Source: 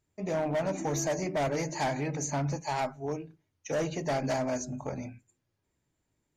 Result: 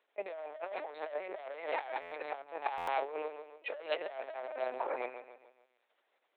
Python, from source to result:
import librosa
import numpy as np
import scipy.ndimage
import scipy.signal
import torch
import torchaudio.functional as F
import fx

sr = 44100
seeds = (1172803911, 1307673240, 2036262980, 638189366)

y = fx.echo_feedback(x, sr, ms=143, feedback_pct=44, wet_db=-11.0)
y = fx.lpc_vocoder(y, sr, seeds[0], excitation='pitch_kept', order=10)
y = fx.over_compress(y, sr, threshold_db=-36.0, ratio=-0.5)
y = scipy.signal.sosfilt(scipy.signal.butter(4, 510.0, 'highpass', fs=sr, output='sos'), y)
y = fx.buffer_glitch(y, sr, at_s=(2.01, 2.77), block=512, repeats=8)
y = F.gain(torch.from_numpy(y), 4.5).numpy()